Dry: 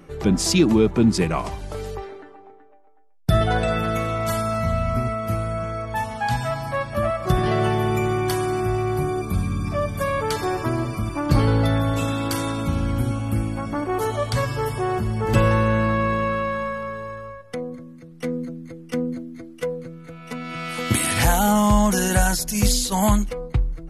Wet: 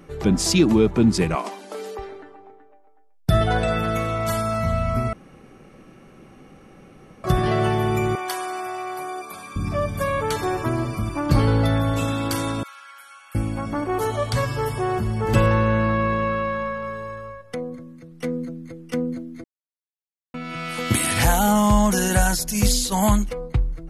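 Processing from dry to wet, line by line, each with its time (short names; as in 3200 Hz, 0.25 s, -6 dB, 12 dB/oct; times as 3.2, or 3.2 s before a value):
1.35–1.99 brick-wall FIR high-pass 190 Hz
5.13–7.24 room tone
8.15–9.56 Chebyshev high-pass 690 Hz
10.07–10.76 notch 4900 Hz, Q 7.1
12.63–13.35 ladder high-pass 1200 Hz, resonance 45%
15.46–16.84 bell 10000 Hz -14.5 dB 0.87 oct
19.44–20.34 mute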